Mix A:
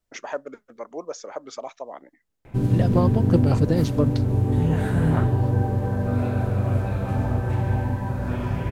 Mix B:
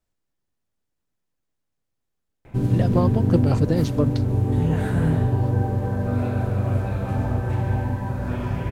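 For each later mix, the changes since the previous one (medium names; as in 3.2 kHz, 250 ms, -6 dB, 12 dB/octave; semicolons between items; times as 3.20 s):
first voice: muted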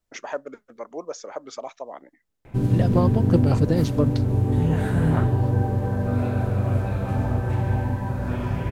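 first voice: unmuted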